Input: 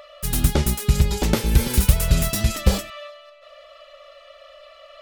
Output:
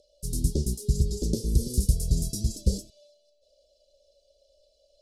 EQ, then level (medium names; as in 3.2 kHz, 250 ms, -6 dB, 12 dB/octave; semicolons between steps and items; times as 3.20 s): elliptic band-stop 440–4900 Hz, stop band 80 dB; low-pass 11 kHz 24 dB/octave; -6.0 dB